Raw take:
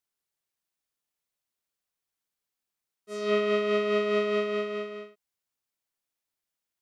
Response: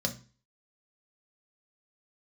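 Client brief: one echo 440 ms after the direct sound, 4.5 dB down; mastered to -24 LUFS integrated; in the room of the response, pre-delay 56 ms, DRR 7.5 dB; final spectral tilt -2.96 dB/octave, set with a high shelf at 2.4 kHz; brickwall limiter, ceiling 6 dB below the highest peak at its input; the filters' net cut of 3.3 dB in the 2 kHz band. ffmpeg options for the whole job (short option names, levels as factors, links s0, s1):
-filter_complex "[0:a]equalizer=f=2000:t=o:g=-5.5,highshelf=f=2400:g=3,alimiter=limit=0.0891:level=0:latency=1,aecho=1:1:440:0.596,asplit=2[s0][s1];[1:a]atrim=start_sample=2205,adelay=56[s2];[s1][s2]afir=irnorm=-1:irlink=0,volume=0.224[s3];[s0][s3]amix=inputs=2:normalize=0,volume=1.58"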